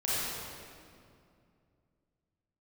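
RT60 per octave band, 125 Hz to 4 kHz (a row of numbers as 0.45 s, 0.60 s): 3.3 s, 3.0 s, 2.6 s, 2.2 s, 1.9 s, 1.6 s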